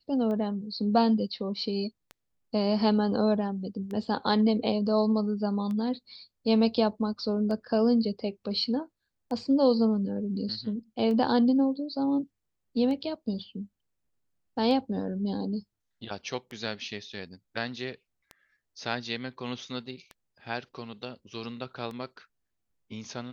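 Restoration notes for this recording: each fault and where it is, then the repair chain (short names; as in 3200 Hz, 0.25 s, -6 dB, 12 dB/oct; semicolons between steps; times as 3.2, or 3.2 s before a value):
tick 33 1/3 rpm -26 dBFS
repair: de-click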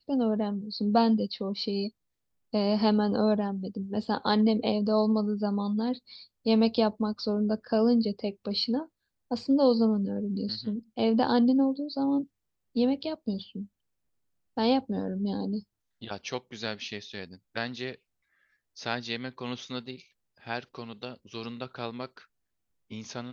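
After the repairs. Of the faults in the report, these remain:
none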